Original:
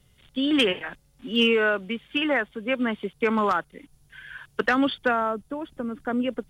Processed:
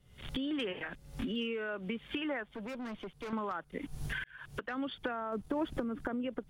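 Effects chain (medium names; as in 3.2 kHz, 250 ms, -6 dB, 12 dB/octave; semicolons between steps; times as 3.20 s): recorder AGC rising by 73 dB/s; 2.43–3.33 s: valve stage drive 32 dB, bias 0.45; treble shelf 3.6 kHz -8 dB; compression 10:1, threshold -26 dBFS, peak gain reduction 12.5 dB; 0.81–1.69 s: dynamic bell 900 Hz, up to -5 dB, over -45 dBFS, Q 1.2; 4.24–4.80 s: fade in; 5.32–5.84 s: waveshaping leveller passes 1; trim -6.5 dB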